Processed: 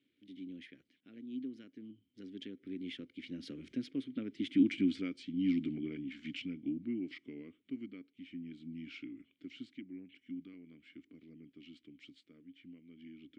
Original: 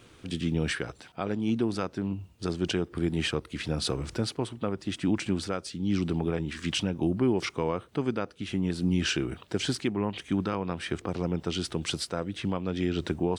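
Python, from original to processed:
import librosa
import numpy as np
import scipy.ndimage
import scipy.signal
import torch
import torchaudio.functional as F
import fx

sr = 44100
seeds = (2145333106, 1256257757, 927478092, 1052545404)

y = fx.doppler_pass(x, sr, speed_mps=36, closest_m=25.0, pass_at_s=4.77)
y = fx.vowel_filter(y, sr, vowel='i')
y = F.gain(torch.from_numpy(y), 6.0).numpy()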